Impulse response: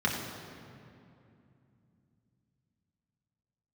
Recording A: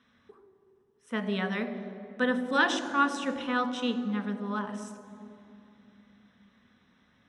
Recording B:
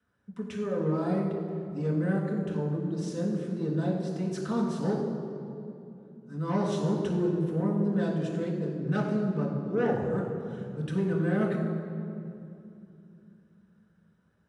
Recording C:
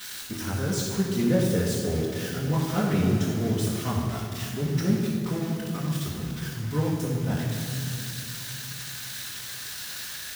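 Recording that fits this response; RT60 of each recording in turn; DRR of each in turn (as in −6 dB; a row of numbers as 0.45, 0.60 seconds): B; 2.7, 2.6, 2.6 seconds; 6.5, −3.5, −11.0 decibels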